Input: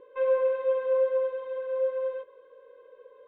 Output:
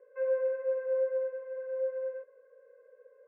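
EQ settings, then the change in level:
band-pass filter 560–2,300 Hz
high-frequency loss of the air 470 metres
phaser with its sweep stopped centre 970 Hz, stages 6
0.0 dB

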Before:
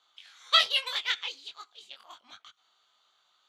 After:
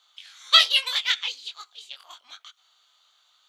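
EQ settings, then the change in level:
high-pass filter 420 Hz 12 dB per octave
high-shelf EQ 2,000 Hz +9 dB
0.0 dB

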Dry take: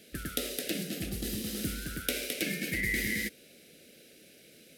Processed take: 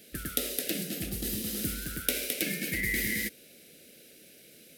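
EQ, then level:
high-shelf EQ 11,000 Hz +10 dB
0.0 dB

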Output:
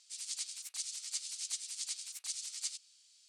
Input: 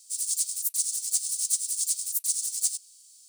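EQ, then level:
band-pass filter 780–2,500 Hz
+7.5 dB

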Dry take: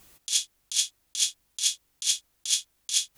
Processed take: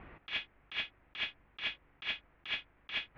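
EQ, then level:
Butterworth low-pass 2,300 Hz 36 dB per octave
+10.0 dB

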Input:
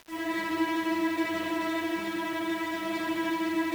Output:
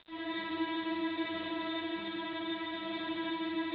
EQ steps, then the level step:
low-pass with resonance 3,700 Hz, resonance Q 13
high-frequency loss of the air 420 metres
−6.0 dB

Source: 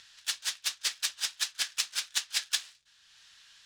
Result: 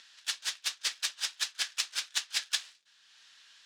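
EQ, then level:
high-pass filter 210 Hz 24 dB per octave
high-shelf EQ 10,000 Hz −8.5 dB
0.0 dB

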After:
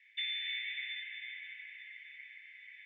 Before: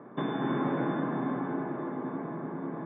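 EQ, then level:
Butterworth high-pass 2,000 Hz 96 dB per octave
high-frequency loss of the air 140 metres
+16.5 dB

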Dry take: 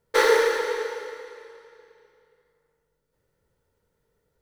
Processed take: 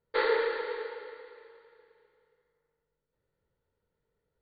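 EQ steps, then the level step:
linear-phase brick-wall low-pass 4,700 Hz
high-frequency loss of the air 55 metres
−8.0 dB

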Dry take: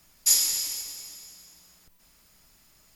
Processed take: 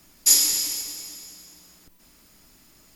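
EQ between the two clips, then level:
parametric band 290 Hz +9 dB 0.93 octaves
+4.0 dB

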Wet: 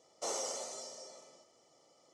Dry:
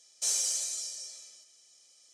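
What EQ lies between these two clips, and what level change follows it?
Savitzky-Golay smoothing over 65 samples
+14.5 dB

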